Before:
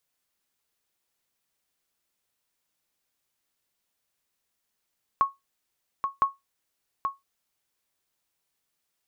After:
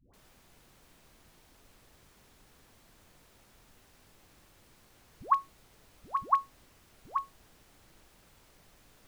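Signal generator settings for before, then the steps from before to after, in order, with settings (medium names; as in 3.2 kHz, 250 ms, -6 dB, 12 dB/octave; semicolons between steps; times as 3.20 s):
sonar ping 1.1 kHz, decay 0.18 s, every 1.01 s, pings 2, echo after 0.83 s, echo -6.5 dB -13 dBFS
added noise pink -61 dBFS; phase dispersion highs, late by 137 ms, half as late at 570 Hz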